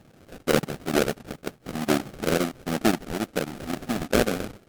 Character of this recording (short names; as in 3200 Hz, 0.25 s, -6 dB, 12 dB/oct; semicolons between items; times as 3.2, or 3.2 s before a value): phasing stages 2, 2.2 Hz, lowest notch 420–2400 Hz; aliases and images of a low sample rate 1000 Hz, jitter 20%; chopped level 7.5 Hz, depth 65%, duty 85%; MP3